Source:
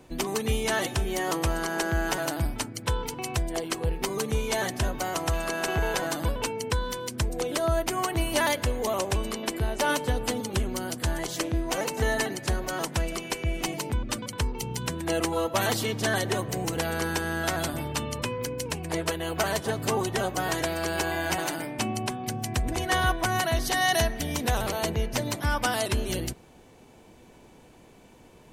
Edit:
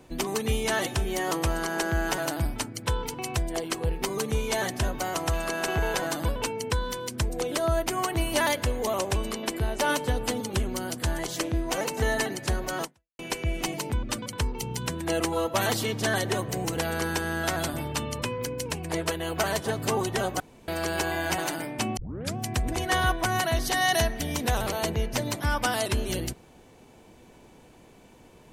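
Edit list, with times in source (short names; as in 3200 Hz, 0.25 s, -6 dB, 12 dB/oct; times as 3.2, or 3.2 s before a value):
12.83–13.19 fade out exponential
20.4–20.68 room tone
21.97 tape start 0.39 s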